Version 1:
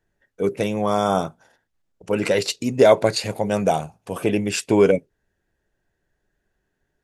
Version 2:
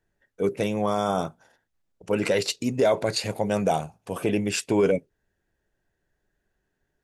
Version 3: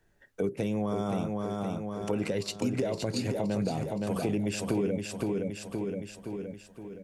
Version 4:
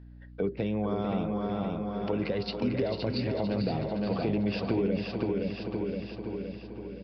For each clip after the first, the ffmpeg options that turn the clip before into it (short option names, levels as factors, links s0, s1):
-af "alimiter=limit=0.316:level=0:latency=1:release=16,volume=0.75"
-filter_complex "[0:a]acrossover=split=350[s0][s1];[s1]acompressor=threshold=0.0178:ratio=4[s2];[s0][s2]amix=inputs=2:normalize=0,asplit=2[s3][s4];[s4]aecho=0:1:518|1036|1554|2072|2590|3108:0.531|0.244|0.112|0.0517|0.0238|0.0109[s5];[s3][s5]amix=inputs=2:normalize=0,acompressor=threshold=0.0126:ratio=2.5,volume=2.24"
-filter_complex "[0:a]aeval=exprs='val(0)+0.00447*(sin(2*PI*60*n/s)+sin(2*PI*2*60*n/s)/2+sin(2*PI*3*60*n/s)/3+sin(2*PI*4*60*n/s)/4+sin(2*PI*5*60*n/s)/5)':c=same,asplit=2[s0][s1];[s1]aecho=0:1:446|892|1338|1784|2230|2676:0.398|0.191|0.0917|0.044|0.0211|0.0101[s2];[s0][s2]amix=inputs=2:normalize=0,aresample=11025,aresample=44100"